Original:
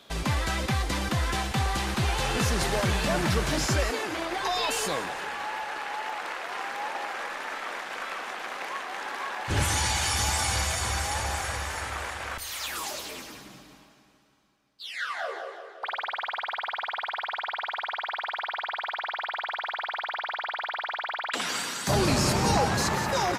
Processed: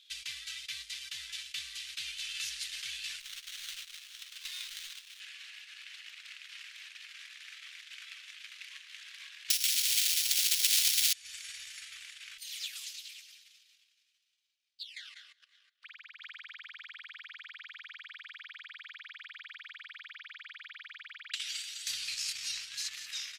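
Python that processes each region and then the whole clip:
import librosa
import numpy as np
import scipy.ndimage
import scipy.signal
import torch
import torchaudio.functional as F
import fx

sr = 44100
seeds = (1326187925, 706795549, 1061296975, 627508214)

y = fx.chain(x, sr, fx.bass_treble(bass_db=-14, treble_db=7),
    fx.quant_companded(bits=4),
    fx.running_max(window=17), at=(3.2, 5.2))
y = fx.chain(y, sr, fx.over_compress(threshold_db=-29.0, ratio=-0.5),
    fx.resample_bad(factor=8, down='none', up='zero_stuff'),
    fx.spectral_comp(ratio=2.0), at=(9.5, 11.13))
y = fx.chain(y, sr, fx.hum_notches(base_hz=50, count=8),
    fx.level_steps(step_db=9), at=(14.83, 16.22))
y = fx.transient(y, sr, attack_db=6, sustain_db=-12)
y = scipy.signal.sosfilt(scipy.signal.cheby2(4, 60, 840.0, 'highpass', fs=sr, output='sos'), y)
y = fx.tilt_eq(y, sr, slope=-4.0)
y = y * 10.0 ** (4.0 / 20.0)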